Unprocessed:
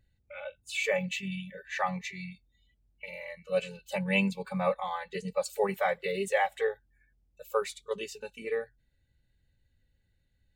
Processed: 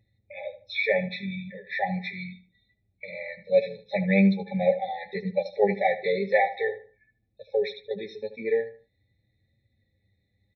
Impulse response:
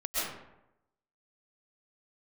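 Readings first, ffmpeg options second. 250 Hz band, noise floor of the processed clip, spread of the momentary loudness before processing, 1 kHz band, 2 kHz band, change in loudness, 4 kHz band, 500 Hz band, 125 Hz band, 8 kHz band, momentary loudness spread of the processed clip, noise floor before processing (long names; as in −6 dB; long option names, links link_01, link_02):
+8.0 dB, −74 dBFS, 15 LU, +3.0 dB, +3.5 dB, +5.5 dB, +0.5 dB, +6.0 dB, +7.0 dB, below −25 dB, 16 LU, −73 dBFS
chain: -filter_complex "[0:a]highpass=82,aresample=11025,aresample=44100,flanger=delay=9:depth=1.1:regen=27:speed=0.83:shape=sinusoidal,asplit=2[link_01][link_02];[link_02]adelay=77,lowpass=frequency=3300:poles=1,volume=-13dB,asplit=2[link_03][link_04];[link_04]adelay=77,lowpass=frequency=3300:poles=1,volume=0.29,asplit=2[link_05][link_06];[link_06]adelay=77,lowpass=frequency=3300:poles=1,volume=0.29[link_07];[link_01][link_03][link_05][link_07]amix=inputs=4:normalize=0,afftfilt=real='re*eq(mod(floor(b*sr/1024/860),2),0)':imag='im*eq(mod(floor(b*sr/1024/860),2),0)':win_size=1024:overlap=0.75,volume=9dB"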